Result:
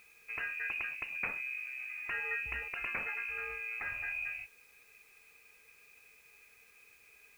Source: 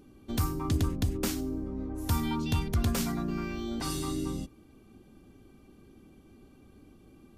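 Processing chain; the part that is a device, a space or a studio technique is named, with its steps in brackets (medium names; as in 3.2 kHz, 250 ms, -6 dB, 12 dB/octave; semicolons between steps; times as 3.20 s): scrambled radio voice (band-pass 370–2700 Hz; frequency inversion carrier 2.8 kHz; white noise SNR 26 dB)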